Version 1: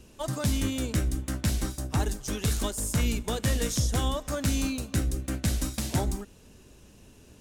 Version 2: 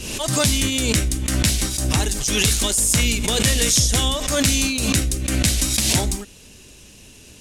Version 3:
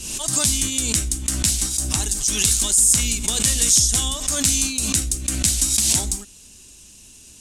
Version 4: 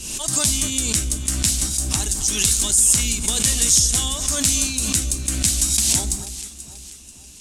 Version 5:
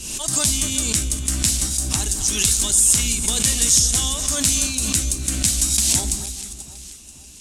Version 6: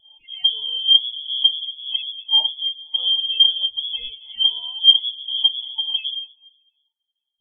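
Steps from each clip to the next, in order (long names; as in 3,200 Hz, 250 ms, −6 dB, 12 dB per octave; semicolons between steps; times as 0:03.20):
flat-topped bell 4,800 Hz +9.5 dB 2.8 octaves; background raised ahead of every attack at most 38 dB per second; level +5 dB
octave-band graphic EQ 125/500/2,000/8,000 Hz −5/−8/−5/+9 dB; level −3.5 dB
delay that swaps between a low-pass and a high-pass 243 ms, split 1,400 Hz, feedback 65%, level −11 dB
delay that plays each chunk backwards 301 ms, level −13.5 dB
hollow resonant body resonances 210/750/1,300/2,500 Hz, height 16 dB, ringing for 50 ms; voice inversion scrambler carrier 3,400 Hz; every bin expanded away from the loudest bin 2.5 to 1; level +3 dB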